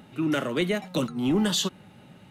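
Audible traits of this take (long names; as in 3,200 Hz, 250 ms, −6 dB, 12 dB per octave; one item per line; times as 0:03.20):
background noise floor −52 dBFS
spectral slope −4.5 dB per octave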